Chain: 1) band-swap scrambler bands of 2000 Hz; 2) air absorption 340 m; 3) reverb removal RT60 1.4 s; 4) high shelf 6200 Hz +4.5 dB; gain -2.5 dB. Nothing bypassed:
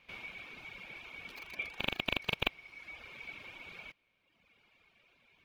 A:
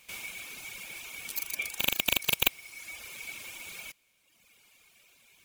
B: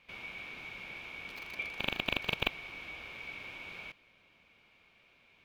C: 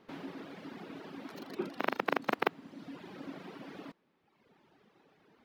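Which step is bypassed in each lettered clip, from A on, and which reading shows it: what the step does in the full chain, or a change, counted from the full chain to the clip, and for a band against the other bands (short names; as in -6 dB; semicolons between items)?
2, 8 kHz band +24.5 dB; 3, momentary loudness spread change -3 LU; 1, 4 kHz band -17.5 dB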